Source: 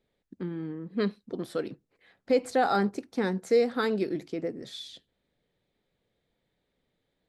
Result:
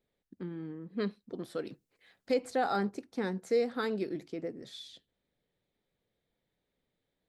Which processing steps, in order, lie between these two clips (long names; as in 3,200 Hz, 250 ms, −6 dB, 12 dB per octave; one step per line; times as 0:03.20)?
0:01.67–0:02.34: high-shelf EQ 3,000 Hz +10.5 dB
level −5.5 dB